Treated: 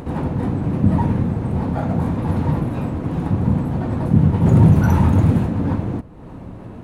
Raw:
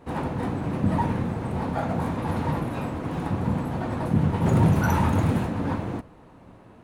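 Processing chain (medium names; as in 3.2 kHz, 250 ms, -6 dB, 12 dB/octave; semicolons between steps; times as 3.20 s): bass shelf 420 Hz +11 dB; upward compressor, threshold -23 dBFS; trim -1.5 dB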